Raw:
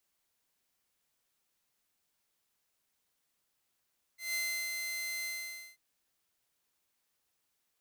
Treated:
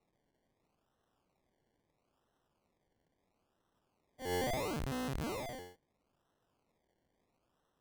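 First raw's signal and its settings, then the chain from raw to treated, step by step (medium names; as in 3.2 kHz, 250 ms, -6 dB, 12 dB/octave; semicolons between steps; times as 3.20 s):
ADSR saw 2.07 kHz, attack 161 ms, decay 349 ms, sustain -4 dB, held 1.07 s, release 518 ms -29 dBFS
decimation with a swept rate 27×, swing 60% 0.75 Hz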